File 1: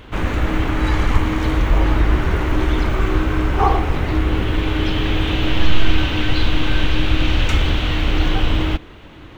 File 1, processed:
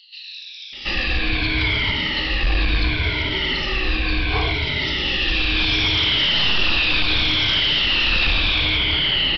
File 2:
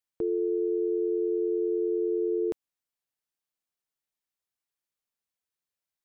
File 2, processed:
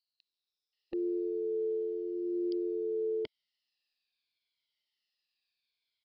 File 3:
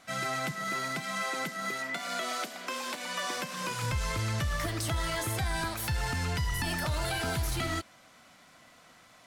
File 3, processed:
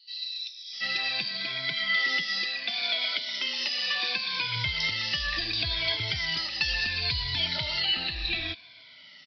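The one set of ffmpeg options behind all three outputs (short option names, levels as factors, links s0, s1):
-filter_complex "[0:a]afftfilt=real='re*pow(10,17/40*sin(2*PI*(1.7*log(max(b,1)*sr/1024/100)/log(2)-(-0.7)*(pts-256)/sr)))':imag='im*pow(10,17/40*sin(2*PI*(1.7*log(max(b,1)*sr/1024/100)/log(2)-(-0.7)*(pts-256)/sr)))':win_size=1024:overlap=0.75,aexciter=amount=12.2:drive=2.2:freq=2000,aresample=11025,volume=1.78,asoftclip=hard,volume=0.562,aresample=44100,acrossover=split=4200[s0][s1];[s0]adelay=730[s2];[s2][s1]amix=inputs=2:normalize=0,volume=0.355"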